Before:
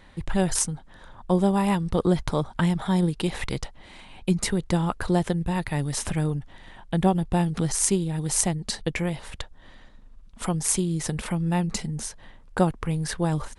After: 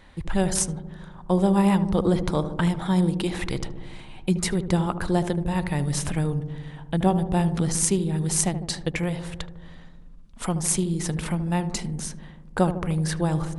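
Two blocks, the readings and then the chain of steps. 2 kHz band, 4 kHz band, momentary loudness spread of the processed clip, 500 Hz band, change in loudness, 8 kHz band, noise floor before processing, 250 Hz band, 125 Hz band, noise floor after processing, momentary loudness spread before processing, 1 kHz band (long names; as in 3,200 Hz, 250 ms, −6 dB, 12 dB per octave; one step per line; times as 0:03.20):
0.0 dB, 0.0 dB, 13 LU, +1.0 dB, +1.0 dB, 0.0 dB, −50 dBFS, +1.5 dB, +1.0 dB, −44 dBFS, 10 LU, +0.5 dB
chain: feedback echo with a low-pass in the loop 76 ms, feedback 80%, low-pass 800 Hz, level −9 dB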